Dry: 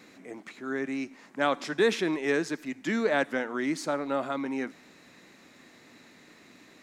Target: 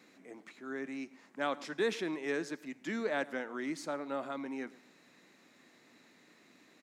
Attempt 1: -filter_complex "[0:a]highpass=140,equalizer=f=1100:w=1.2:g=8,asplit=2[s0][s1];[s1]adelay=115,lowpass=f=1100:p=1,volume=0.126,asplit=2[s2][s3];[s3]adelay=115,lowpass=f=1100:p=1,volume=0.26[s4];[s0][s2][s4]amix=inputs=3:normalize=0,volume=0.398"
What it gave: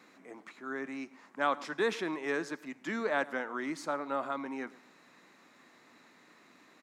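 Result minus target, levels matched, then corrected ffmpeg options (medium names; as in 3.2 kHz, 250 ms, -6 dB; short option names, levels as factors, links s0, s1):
1 kHz band +3.5 dB
-filter_complex "[0:a]highpass=140,asplit=2[s0][s1];[s1]adelay=115,lowpass=f=1100:p=1,volume=0.126,asplit=2[s2][s3];[s3]adelay=115,lowpass=f=1100:p=1,volume=0.26[s4];[s0][s2][s4]amix=inputs=3:normalize=0,volume=0.398"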